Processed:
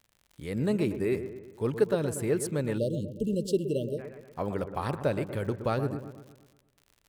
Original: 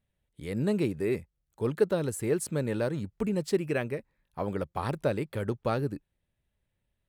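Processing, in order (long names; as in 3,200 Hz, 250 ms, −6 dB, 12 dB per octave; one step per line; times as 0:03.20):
delay with a low-pass on its return 119 ms, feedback 51%, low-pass 1,800 Hz, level −10 dB
surface crackle 73 per second −44 dBFS
time-frequency box erased 0:02.78–0:03.99, 630–2,700 Hz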